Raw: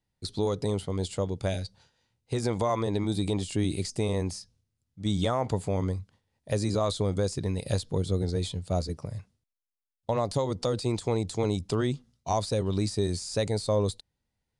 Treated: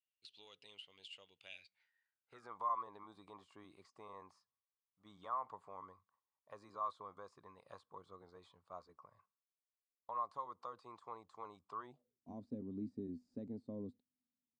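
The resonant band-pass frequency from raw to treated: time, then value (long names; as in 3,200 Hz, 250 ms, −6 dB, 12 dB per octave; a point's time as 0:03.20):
resonant band-pass, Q 11
0:01.48 2,800 Hz
0:02.58 1,100 Hz
0:11.81 1,100 Hz
0:12.29 250 Hz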